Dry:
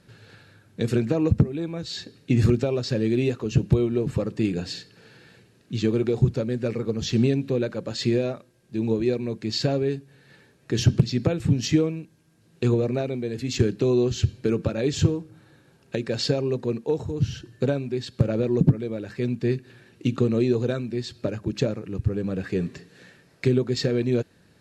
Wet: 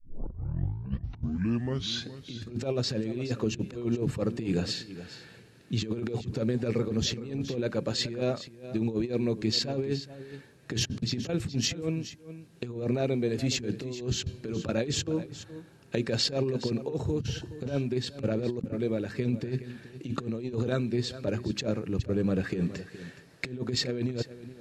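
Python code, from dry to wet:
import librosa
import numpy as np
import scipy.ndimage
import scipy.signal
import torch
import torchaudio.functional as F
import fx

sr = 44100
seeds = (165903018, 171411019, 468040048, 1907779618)

p1 = fx.tape_start_head(x, sr, length_s=2.18)
p2 = fx.over_compress(p1, sr, threshold_db=-26.0, ratio=-0.5)
p3 = p2 + fx.echo_single(p2, sr, ms=419, db=-14.0, dry=0)
y = p3 * librosa.db_to_amplitude(-3.0)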